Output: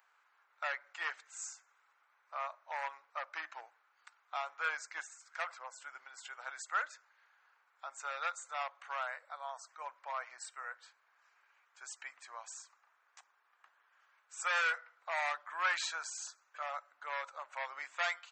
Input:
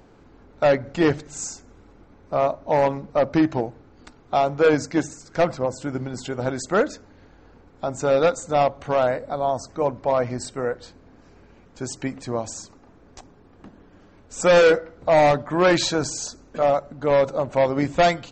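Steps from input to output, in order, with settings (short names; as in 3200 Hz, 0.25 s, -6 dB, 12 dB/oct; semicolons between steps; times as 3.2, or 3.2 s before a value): HPF 1200 Hz 24 dB/oct; bell 4900 Hz -11 dB 1.8 oct; gain -4.5 dB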